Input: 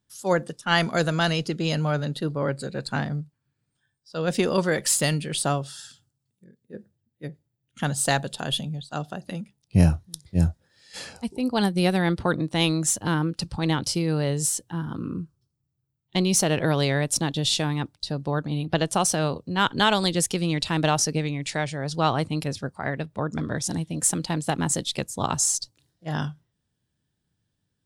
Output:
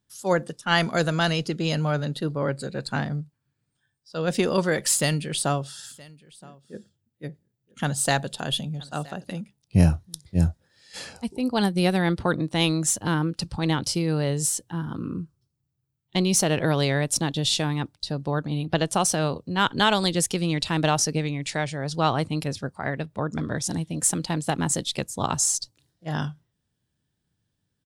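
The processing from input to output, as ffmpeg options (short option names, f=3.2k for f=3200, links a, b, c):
-filter_complex "[0:a]asplit=3[a][b][c];[a]afade=t=out:st=5.77:d=0.02[d];[b]aecho=1:1:971:0.0708,afade=t=in:st=5.77:d=0.02,afade=t=out:st=9.38:d=0.02[e];[c]afade=t=in:st=9.38:d=0.02[f];[d][e][f]amix=inputs=3:normalize=0"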